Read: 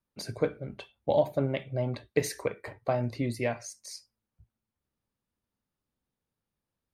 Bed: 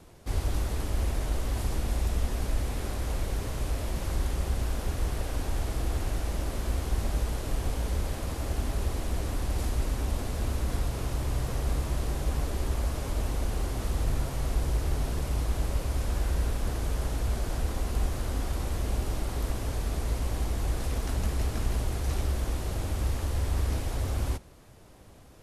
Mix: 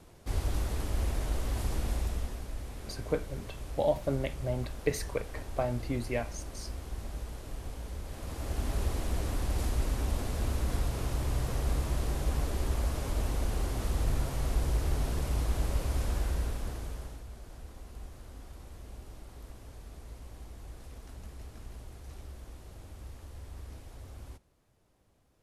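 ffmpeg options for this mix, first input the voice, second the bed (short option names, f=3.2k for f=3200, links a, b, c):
-filter_complex "[0:a]adelay=2700,volume=-3dB[a];[1:a]volume=6.5dB,afade=t=out:st=1.88:d=0.56:silence=0.398107,afade=t=in:st=8.05:d=0.71:silence=0.354813,afade=t=out:st=16.02:d=1.23:silence=0.16788[b];[a][b]amix=inputs=2:normalize=0"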